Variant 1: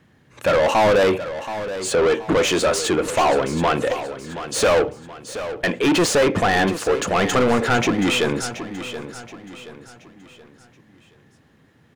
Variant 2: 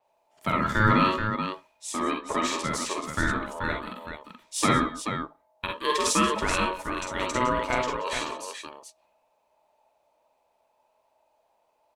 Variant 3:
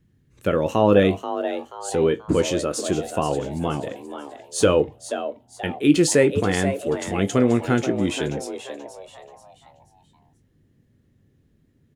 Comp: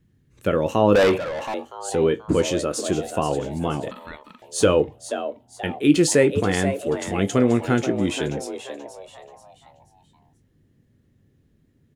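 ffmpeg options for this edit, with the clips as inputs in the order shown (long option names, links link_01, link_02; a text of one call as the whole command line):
ffmpeg -i take0.wav -i take1.wav -i take2.wav -filter_complex "[2:a]asplit=3[link_01][link_02][link_03];[link_01]atrim=end=0.952[link_04];[0:a]atrim=start=0.948:end=1.542[link_05];[link_02]atrim=start=1.538:end=3.912[link_06];[1:a]atrim=start=3.908:end=4.422[link_07];[link_03]atrim=start=4.418[link_08];[link_04][link_05]acrossfade=duration=0.004:curve1=hsin:curve2=hsin[link_09];[link_09][link_06]acrossfade=duration=0.004:curve1=hsin:curve2=hsin[link_10];[link_10][link_07]acrossfade=duration=0.004:curve1=hsin:curve2=hsin[link_11];[link_11][link_08]acrossfade=duration=0.004:curve1=hsin:curve2=hsin" out.wav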